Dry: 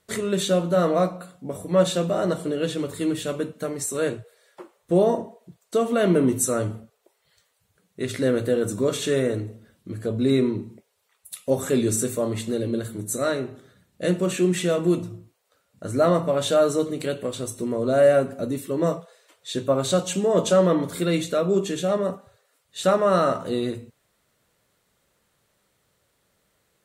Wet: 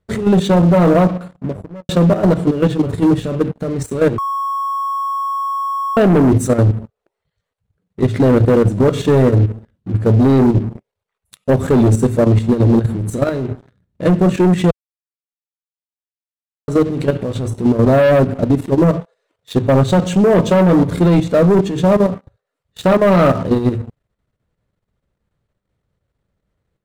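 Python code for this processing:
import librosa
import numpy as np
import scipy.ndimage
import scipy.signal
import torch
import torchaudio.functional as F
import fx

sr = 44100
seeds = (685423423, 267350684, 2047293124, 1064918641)

y = fx.studio_fade_out(x, sr, start_s=1.2, length_s=0.69)
y = fx.edit(y, sr, fx.bleep(start_s=4.18, length_s=1.79, hz=1100.0, db=-20.0),
    fx.silence(start_s=14.71, length_s=1.97), tone=tone)
y = fx.riaa(y, sr, side='playback')
y = fx.leveller(y, sr, passes=3)
y = fx.level_steps(y, sr, step_db=10)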